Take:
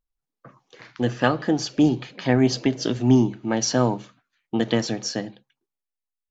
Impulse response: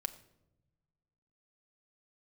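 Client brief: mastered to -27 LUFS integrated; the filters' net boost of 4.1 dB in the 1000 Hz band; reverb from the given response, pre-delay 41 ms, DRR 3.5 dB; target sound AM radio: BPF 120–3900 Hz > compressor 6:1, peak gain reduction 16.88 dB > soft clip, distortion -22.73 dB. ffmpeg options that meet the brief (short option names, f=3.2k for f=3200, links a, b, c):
-filter_complex "[0:a]equalizer=f=1k:t=o:g=5.5,asplit=2[a][b];[1:a]atrim=start_sample=2205,adelay=41[c];[b][c]afir=irnorm=-1:irlink=0,volume=-3dB[d];[a][d]amix=inputs=2:normalize=0,highpass=120,lowpass=3.9k,acompressor=threshold=-29dB:ratio=6,asoftclip=threshold=-19.5dB,volume=7.5dB"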